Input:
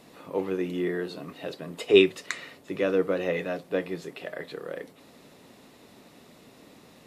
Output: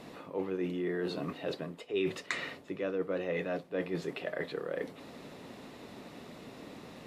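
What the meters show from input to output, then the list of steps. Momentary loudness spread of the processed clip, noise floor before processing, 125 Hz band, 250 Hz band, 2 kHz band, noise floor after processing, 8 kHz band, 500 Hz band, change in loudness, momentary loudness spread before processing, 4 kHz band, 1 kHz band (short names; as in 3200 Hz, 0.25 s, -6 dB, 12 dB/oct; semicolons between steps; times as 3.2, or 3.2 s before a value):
15 LU, -54 dBFS, -3.0 dB, -6.5 dB, -6.0 dB, -52 dBFS, -7.0 dB, -8.5 dB, -8.0 dB, 18 LU, -10.0 dB, -3.5 dB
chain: high shelf 6000 Hz -11 dB; reverse; compressor 5:1, threshold -37 dBFS, peak gain reduction 22 dB; reverse; gain +5 dB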